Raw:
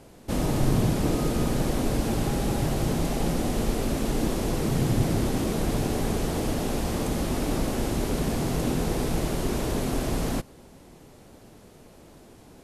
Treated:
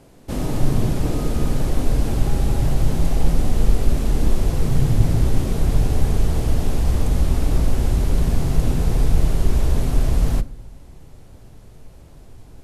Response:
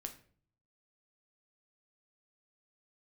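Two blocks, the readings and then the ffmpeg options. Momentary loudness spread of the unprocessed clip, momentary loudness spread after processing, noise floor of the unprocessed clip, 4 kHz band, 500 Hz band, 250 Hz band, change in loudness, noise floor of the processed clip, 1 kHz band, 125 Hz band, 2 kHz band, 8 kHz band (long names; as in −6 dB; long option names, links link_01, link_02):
4 LU, 3 LU, −51 dBFS, −1.0 dB, −1.0 dB, +0.5 dB, +5.0 dB, −44 dBFS, −1.0 dB, +7.5 dB, −1.0 dB, −1.0 dB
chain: -filter_complex "[0:a]asubboost=boost=4.5:cutoff=110,asplit=2[link_01][link_02];[1:a]atrim=start_sample=2205,lowshelf=frequency=480:gain=5.5[link_03];[link_02][link_03]afir=irnorm=-1:irlink=0,volume=-1.5dB[link_04];[link_01][link_04]amix=inputs=2:normalize=0,volume=-4.5dB"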